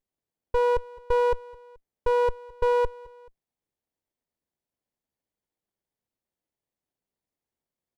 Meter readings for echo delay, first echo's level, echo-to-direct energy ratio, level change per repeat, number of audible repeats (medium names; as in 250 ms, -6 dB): 215 ms, -22.0 dB, -21.0 dB, -5.5 dB, 2